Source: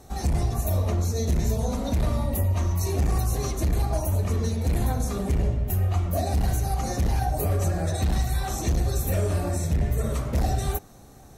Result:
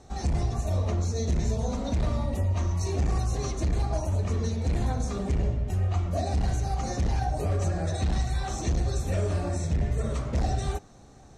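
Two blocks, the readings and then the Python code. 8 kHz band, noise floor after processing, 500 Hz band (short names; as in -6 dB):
-5.0 dB, -50 dBFS, -2.5 dB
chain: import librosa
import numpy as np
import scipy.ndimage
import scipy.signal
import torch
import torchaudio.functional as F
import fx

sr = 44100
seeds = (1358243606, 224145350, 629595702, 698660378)

y = scipy.signal.sosfilt(scipy.signal.butter(4, 7700.0, 'lowpass', fs=sr, output='sos'), x)
y = F.gain(torch.from_numpy(y), -2.5).numpy()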